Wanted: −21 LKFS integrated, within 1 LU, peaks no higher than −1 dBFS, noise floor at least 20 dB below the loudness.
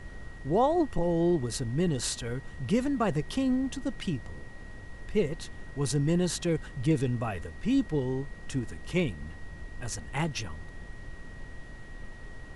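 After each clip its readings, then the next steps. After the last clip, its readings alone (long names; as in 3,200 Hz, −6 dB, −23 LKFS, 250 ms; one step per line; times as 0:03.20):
interfering tone 1,900 Hz; level of the tone −51 dBFS; background noise floor −45 dBFS; target noise floor −50 dBFS; integrated loudness −30.0 LKFS; sample peak −15.0 dBFS; target loudness −21.0 LKFS
→ notch filter 1,900 Hz, Q 30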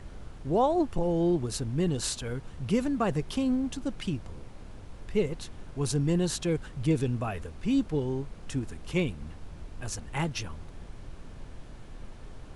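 interfering tone none found; background noise floor −46 dBFS; target noise floor −50 dBFS
→ noise reduction from a noise print 6 dB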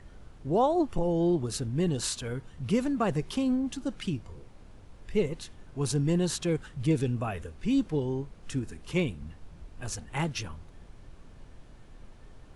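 background noise floor −51 dBFS; integrated loudness −30.0 LKFS; sample peak −15.0 dBFS; target loudness −21.0 LKFS
→ level +9 dB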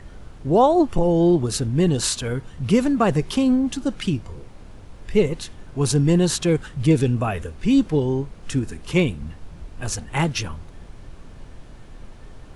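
integrated loudness −21.0 LKFS; sample peak −6.0 dBFS; background noise floor −42 dBFS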